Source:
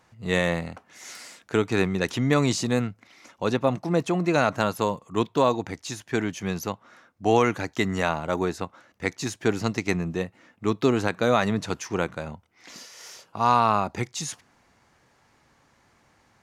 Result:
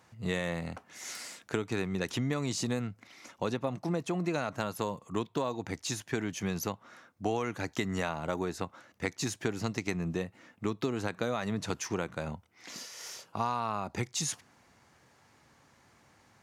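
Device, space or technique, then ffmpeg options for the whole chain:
ASMR close-microphone chain: -af "highpass=79,lowshelf=f=110:g=5,acompressor=threshold=-27dB:ratio=6,highshelf=f=7k:g=7.5,highshelf=f=8.4k:g=-4,volume=-1.5dB"

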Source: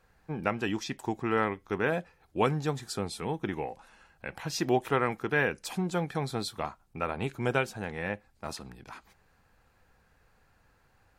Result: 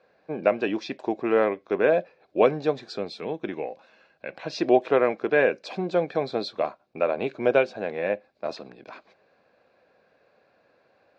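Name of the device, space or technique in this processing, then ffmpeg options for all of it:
phone earpiece: -filter_complex "[0:a]highpass=340,equalizer=f=590:t=q:w=4:g=8,equalizer=f=880:t=q:w=4:g=-10,equalizer=f=1.3k:t=q:w=4:g=-9,equalizer=f=1.9k:t=q:w=4:g=-9,equalizer=f=3.1k:t=q:w=4:g=-10,lowpass=f=3.9k:w=0.5412,lowpass=f=3.9k:w=1.3066,asettb=1/sr,asplit=3[a][b][c];[a]atrim=end=2.964[d];[b]atrim=start=2.96:end=4.43,asetpts=PTS-STARTPTS,afade=t=in:d=0.004:c=qsin,afade=t=out:st=1.466:d=0.004:c=qsin,equalizer=f=610:t=o:w=2.4:g=-5[e];[c]atrim=start=4.426[f];[d][e]acrossfade=d=0.004:c1=hsin:c2=qsin[g];[g][f]acrossfade=d=0.004:c1=qsin:c2=hsin,volume=9dB"

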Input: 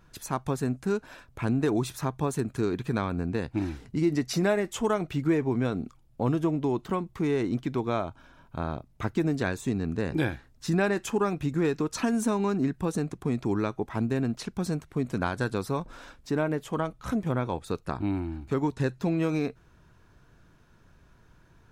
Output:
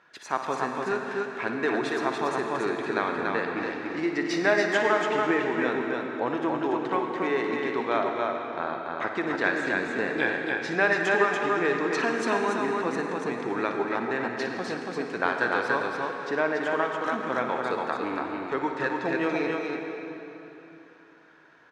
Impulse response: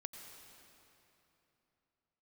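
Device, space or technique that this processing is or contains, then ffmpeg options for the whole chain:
station announcement: -filter_complex "[0:a]highpass=460,lowpass=4k,equalizer=f=1.8k:t=o:w=0.5:g=7,aecho=1:1:58.31|285.7:0.282|0.708[a];[1:a]atrim=start_sample=2205[b];[a][b]afir=irnorm=-1:irlink=0,volume=8dB"

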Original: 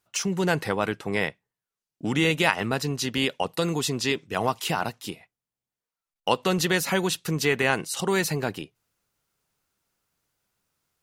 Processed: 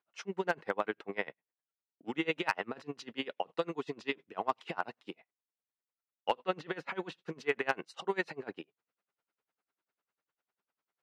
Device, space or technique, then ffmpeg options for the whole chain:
helicopter radio: -filter_complex "[0:a]asettb=1/sr,asplit=3[a][b][c];[a]atrim=end=6.394[d];[b]atrim=start=6.39:end=7.12,asetpts=PTS-STARTPTS,afade=t=in:d=0.004:c=qsin,afade=t=out:st=0.726:d=0.004:c=qsin,acrossover=split=4100[e][f];[f]acompressor=threshold=-41dB:ratio=4:attack=1:release=60[g];[e][g]amix=inputs=2:normalize=0[h];[c]atrim=start=7.116[i];[d][h]acrossfade=d=0.004:c1=hsin:c2=qsin[j];[j][i]acrossfade=d=0.004:c1=qsin:c2=hsin,highpass=310,lowpass=2.5k,aeval=exprs='val(0)*pow(10,-27*(0.5-0.5*cos(2*PI*10*n/s))/20)':c=same,asoftclip=type=hard:threshold=-14.5dB,volume=-2.5dB"

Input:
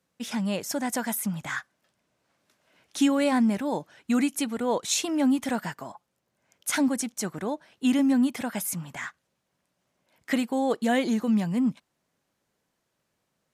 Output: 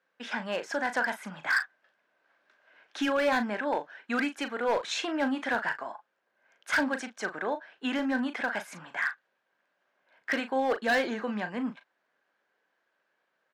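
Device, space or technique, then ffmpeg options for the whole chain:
megaphone: -filter_complex "[0:a]highpass=470,lowpass=2.9k,equalizer=f=1.6k:t=o:w=0.27:g=10.5,asoftclip=type=hard:threshold=-23.5dB,asplit=2[a][b];[b]adelay=38,volume=-10dB[c];[a][c]amix=inputs=2:normalize=0,volume=2dB"

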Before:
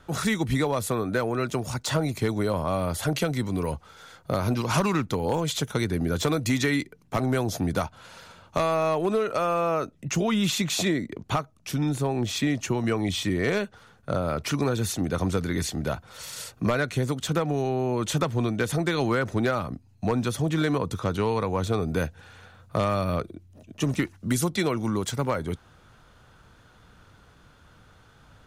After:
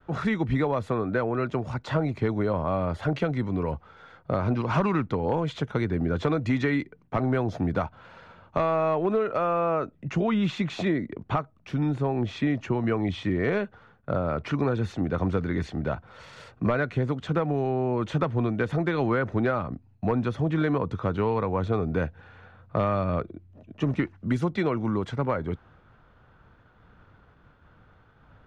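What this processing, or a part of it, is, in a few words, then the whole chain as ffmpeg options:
hearing-loss simulation: -af "lowpass=2.1k,agate=range=-33dB:threshold=-52dB:ratio=3:detection=peak"

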